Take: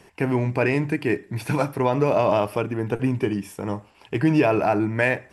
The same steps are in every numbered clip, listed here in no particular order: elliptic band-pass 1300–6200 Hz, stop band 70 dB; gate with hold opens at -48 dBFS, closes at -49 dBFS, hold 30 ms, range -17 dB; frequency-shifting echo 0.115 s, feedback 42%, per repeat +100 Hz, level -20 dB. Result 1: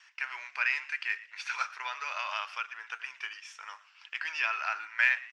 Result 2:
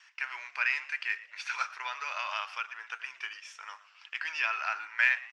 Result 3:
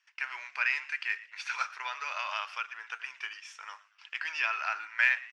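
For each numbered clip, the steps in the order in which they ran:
gate with hold > elliptic band-pass > frequency-shifting echo; gate with hold > frequency-shifting echo > elliptic band-pass; elliptic band-pass > gate with hold > frequency-shifting echo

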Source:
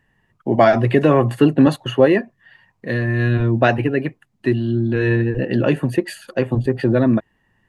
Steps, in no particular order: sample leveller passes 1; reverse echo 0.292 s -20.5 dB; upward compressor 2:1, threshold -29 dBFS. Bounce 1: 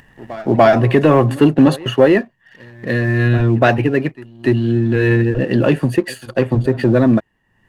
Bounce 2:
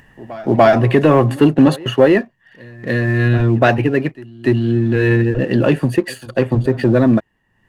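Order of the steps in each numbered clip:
upward compressor > reverse echo > sample leveller; sample leveller > upward compressor > reverse echo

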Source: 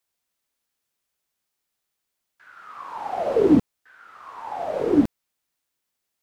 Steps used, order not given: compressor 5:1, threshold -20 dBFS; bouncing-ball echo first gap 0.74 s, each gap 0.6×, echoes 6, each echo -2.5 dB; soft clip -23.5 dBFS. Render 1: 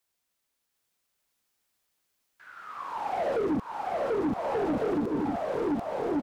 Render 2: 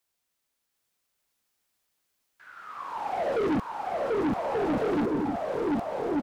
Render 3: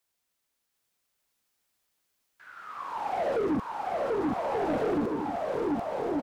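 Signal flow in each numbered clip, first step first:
bouncing-ball echo > compressor > soft clip; bouncing-ball echo > soft clip > compressor; compressor > bouncing-ball echo > soft clip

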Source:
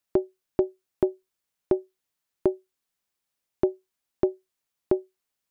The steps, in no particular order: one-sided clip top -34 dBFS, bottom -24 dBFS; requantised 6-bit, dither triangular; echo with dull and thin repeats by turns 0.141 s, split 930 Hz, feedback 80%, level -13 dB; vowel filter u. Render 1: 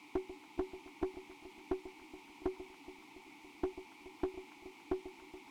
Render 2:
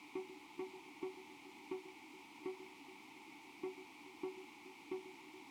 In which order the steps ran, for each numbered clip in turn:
requantised > vowel filter > one-sided clip > echo with dull and thin repeats by turns; one-sided clip > echo with dull and thin repeats by turns > requantised > vowel filter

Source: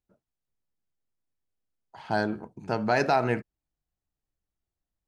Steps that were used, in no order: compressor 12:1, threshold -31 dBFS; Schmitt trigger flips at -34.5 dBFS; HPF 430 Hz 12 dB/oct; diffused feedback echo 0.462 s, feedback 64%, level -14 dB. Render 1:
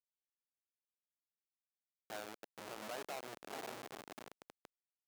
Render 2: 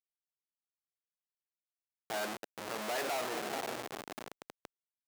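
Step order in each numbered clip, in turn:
diffused feedback echo > compressor > Schmitt trigger > HPF; diffused feedback echo > Schmitt trigger > compressor > HPF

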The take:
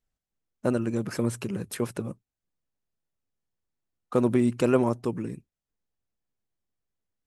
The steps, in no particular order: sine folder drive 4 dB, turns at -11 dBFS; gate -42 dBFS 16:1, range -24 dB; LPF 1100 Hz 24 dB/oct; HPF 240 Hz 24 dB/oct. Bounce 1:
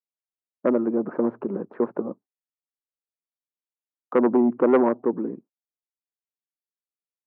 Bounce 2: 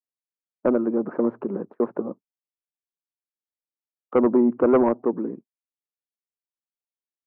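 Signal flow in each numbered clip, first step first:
LPF > sine folder > gate > HPF; LPF > gate > HPF > sine folder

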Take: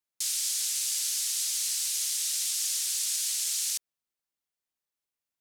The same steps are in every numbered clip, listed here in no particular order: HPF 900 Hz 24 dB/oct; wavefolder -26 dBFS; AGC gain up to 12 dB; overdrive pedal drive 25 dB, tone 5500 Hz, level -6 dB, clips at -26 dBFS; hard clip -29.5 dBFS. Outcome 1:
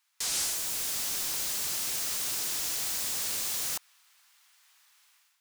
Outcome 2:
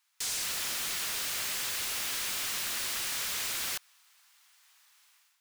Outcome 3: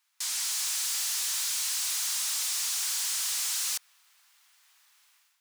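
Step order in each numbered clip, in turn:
HPF > hard clip > overdrive pedal > AGC > wavefolder; AGC > wavefolder > hard clip > HPF > overdrive pedal; overdrive pedal > AGC > hard clip > wavefolder > HPF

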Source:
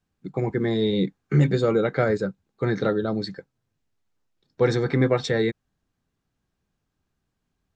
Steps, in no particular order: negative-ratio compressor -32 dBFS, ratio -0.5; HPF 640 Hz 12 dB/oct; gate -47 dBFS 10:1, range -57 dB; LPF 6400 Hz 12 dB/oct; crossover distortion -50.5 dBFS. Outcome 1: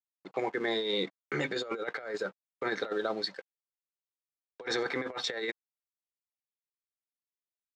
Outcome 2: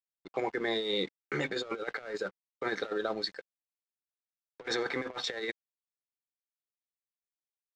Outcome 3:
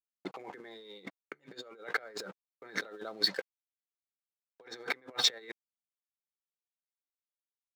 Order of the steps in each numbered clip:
gate > crossover distortion > HPF > negative-ratio compressor > LPF; gate > HPF > negative-ratio compressor > crossover distortion > LPF; LPF > crossover distortion > gate > negative-ratio compressor > HPF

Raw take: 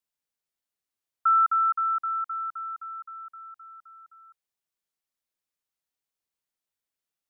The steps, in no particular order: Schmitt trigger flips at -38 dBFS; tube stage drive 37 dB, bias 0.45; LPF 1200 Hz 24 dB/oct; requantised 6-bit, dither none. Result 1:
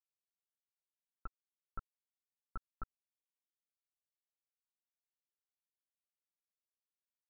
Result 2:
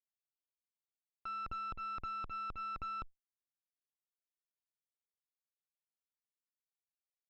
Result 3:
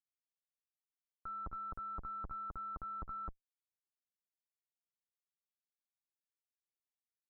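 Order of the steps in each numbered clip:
Schmitt trigger > tube stage > requantised > LPF; requantised > Schmitt trigger > LPF > tube stage; Schmitt trigger > requantised > tube stage > LPF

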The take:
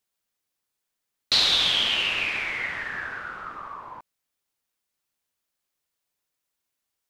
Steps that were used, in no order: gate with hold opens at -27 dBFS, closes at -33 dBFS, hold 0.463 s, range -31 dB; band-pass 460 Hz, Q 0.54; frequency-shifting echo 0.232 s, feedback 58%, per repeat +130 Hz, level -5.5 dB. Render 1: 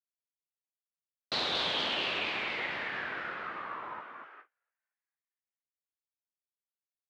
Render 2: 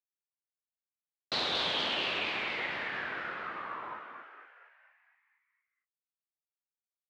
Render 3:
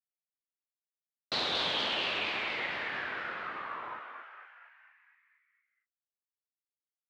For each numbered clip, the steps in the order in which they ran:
frequency-shifting echo > gate with hold > band-pass; gate with hold > frequency-shifting echo > band-pass; gate with hold > band-pass > frequency-shifting echo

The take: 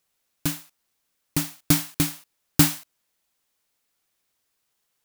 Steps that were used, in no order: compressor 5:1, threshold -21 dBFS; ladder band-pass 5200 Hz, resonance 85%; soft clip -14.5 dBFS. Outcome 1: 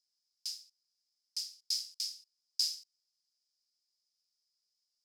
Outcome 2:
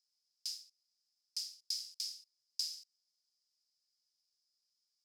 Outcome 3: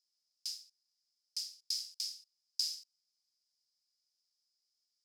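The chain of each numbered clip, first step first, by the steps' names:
soft clip > ladder band-pass > compressor; compressor > soft clip > ladder band-pass; soft clip > compressor > ladder band-pass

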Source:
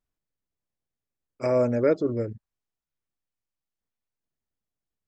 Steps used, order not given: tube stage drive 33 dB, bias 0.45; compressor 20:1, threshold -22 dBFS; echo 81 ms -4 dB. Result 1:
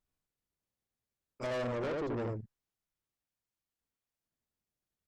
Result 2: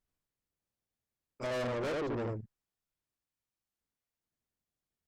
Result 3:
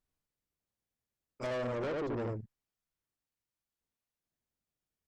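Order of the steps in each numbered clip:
compressor > echo > tube stage; echo > tube stage > compressor; echo > compressor > tube stage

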